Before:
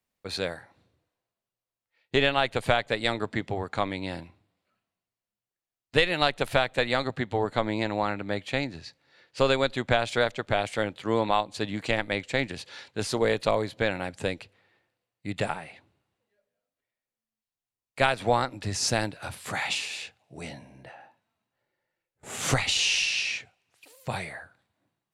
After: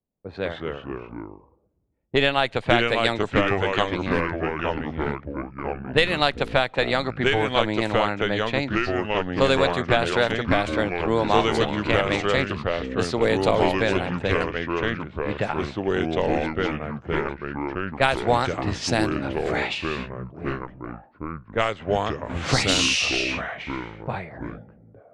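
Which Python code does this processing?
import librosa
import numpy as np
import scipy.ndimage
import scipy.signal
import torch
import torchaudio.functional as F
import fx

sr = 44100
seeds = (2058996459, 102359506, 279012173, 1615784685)

y = fx.echo_pitch(x, sr, ms=153, semitones=-3, count=3, db_per_echo=-3.0)
y = fx.env_lowpass(y, sr, base_hz=490.0, full_db=-19.5)
y = y * librosa.db_to_amplitude(3.0)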